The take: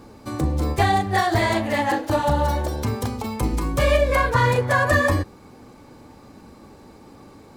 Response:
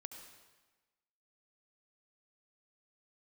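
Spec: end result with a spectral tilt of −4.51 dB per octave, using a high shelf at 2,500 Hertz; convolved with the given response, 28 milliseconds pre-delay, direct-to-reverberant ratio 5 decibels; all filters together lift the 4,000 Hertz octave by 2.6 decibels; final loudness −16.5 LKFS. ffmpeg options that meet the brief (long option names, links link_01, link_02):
-filter_complex "[0:a]highshelf=frequency=2500:gain=-7,equalizer=frequency=4000:width_type=o:gain=9,asplit=2[link_01][link_02];[1:a]atrim=start_sample=2205,adelay=28[link_03];[link_02][link_03]afir=irnorm=-1:irlink=0,volume=-0.5dB[link_04];[link_01][link_04]amix=inputs=2:normalize=0,volume=3.5dB"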